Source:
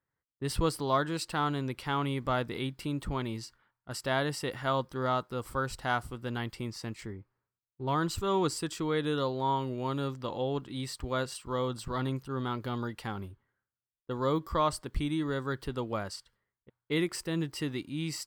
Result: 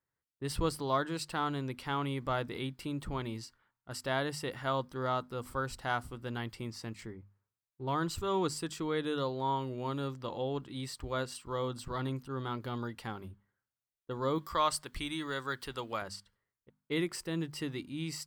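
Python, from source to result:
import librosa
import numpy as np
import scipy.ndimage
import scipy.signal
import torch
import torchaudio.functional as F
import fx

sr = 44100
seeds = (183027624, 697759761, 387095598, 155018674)

y = fx.tilt_shelf(x, sr, db=-7.0, hz=710.0, at=(14.38, 16.02))
y = fx.hum_notches(y, sr, base_hz=50, count=5)
y = F.gain(torch.from_numpy(y), -3.0).numpy()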